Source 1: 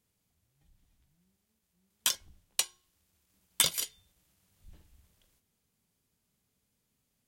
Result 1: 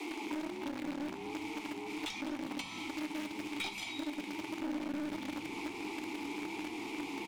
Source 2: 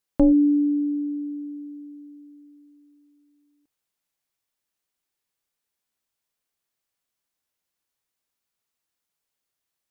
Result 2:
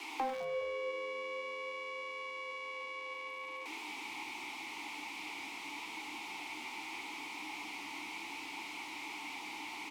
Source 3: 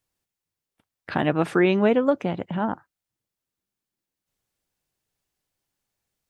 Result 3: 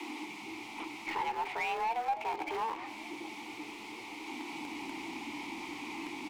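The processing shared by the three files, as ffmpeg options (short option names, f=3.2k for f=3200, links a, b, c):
-filter_complex "[0:a]aeval=exprs='val(0)+0.5*0.0282*sgn(val(0))':c=same,afreqshift=230,acrossover=split=480|3000[a][b][c];[a]acompressor=threshold=-36dB:ratio=2.5[d];[d][b][c]amix=inputs=3:normalize=0,asplit=3[e][f][g];[e]bandpass=f=300:t=q:w=8,volume=0dB[h];[f]bandpass=f=870:t=q:w=8,volume=-6dB[i];[g]bandpass=f=2.24k:t=q:w=8,volume=-9dB[j];[h][i][j]amix=inputs=3:normalize=0,highshelf=f=3.6k:g=10,asplit=2[k][l];[l]acrusher=bits=4:dc=4:mix=0:aa=0.000001,volume=-4dB[m];[k][m]amix=inputs=2:normalize=0,acompressor=threshold=-46dB:ratio=2.5,asplit=2[n][o];[o]highpass=f=720:p=1,volume=19dB,asoftclip=type=tanh:threshold=-28dB[p];[n][p]amix=inputs=2:normalize=0,lowpass=f=2.6k:p=1,volume=-6dB,flanger=delay=8:depth=7:regen=80:speed=0.45:shape=triangular,asplit=2[q][r];[r]asplit=3[s][t][u];[s]adelay=206,afreqshift=-94,volume=-14.5dB[v];[t]adelay=412,afreqshift=-188,volume=-23.6dB[w];[u]adelay=618,afreqshift=-282,volume=-32.7dB[x];[v][w][x]amix=inputs=3:normalize=0[y];[q][y]amix=inputs=2:normalize=0,volume=8dB"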